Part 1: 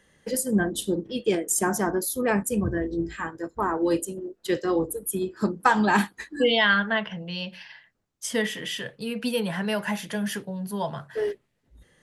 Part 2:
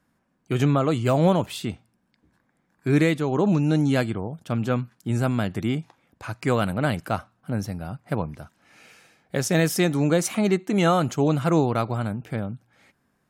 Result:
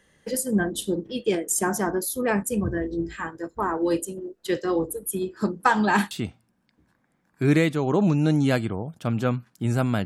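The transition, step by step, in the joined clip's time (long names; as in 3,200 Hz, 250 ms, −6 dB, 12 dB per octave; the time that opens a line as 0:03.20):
part 1
0:06.11: continue with part 2 from 0:01.56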